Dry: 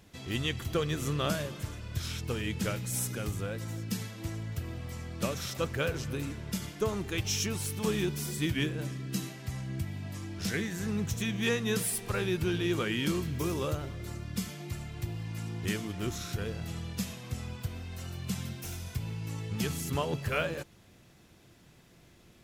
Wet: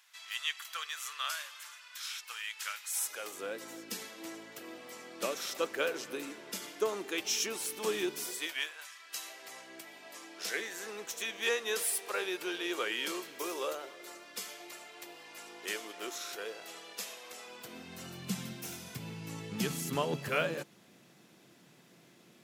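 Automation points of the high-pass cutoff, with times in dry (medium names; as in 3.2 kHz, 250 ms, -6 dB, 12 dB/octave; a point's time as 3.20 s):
high-pass 24 dB/octave
2.84 s 1.1 kHz
3.46 s 310 Hz
8.18 s 310 Hz
8.89 s 1.1 kHz
9.44 s 420 Hz
17.44 s 420 Hz
17.91 s 160 Hz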